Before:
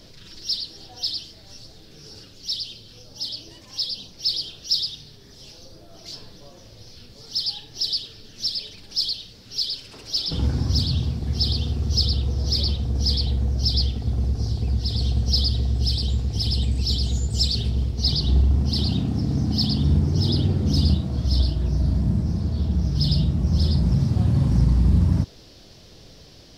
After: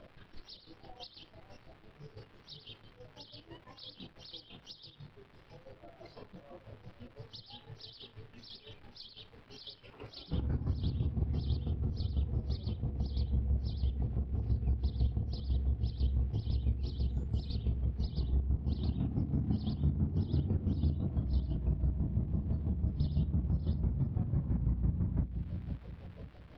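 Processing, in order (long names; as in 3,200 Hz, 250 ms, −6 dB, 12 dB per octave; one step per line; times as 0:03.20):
square-wave tremolo 6 Hz, depth 65%, duty 40%
noise reduction from a noise print of the clip's start 9 dB
surface crackle 410 per second −42 dBFS
downward compressor 4 to 1, threshold −33 dBFS, peak gain reduction 16 dB
high-frequency loss of the air 480 metres
delay with a low-pass on its return 521 ms, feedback 35%, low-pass 480 Hz, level −6.5 dB
level +2 dB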